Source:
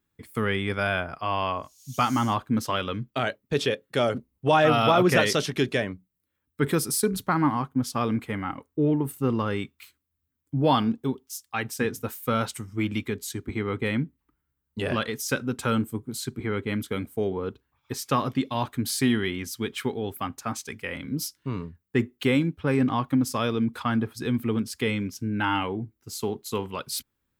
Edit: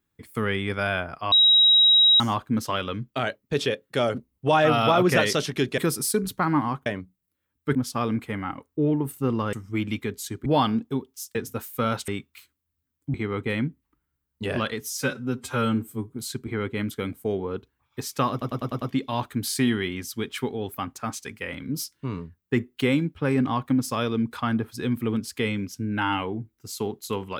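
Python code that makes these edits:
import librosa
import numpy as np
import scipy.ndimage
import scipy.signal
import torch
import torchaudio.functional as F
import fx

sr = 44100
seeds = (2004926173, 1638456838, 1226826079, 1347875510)

y = fx.edit(x, sr, fx.bleep(start_s=1.32, length_s=0.88, hz=3830.0, db=-13.0),
    fx.move(start_s=5.78, length_s=0.89, to_s=7.75),
    fx.swap(start_s=9.53, length_s=1.06, other_s=12.57, other_length_s=0.93),
    fx.cut(start_s=11.48, length_s=0.36),
    fx.stretch_span(start_s=15.16, length_s=0.87, factor=1.5),
    fx.stutter(start_s=18.24, slice_s=0.1, count=6), tone=tone)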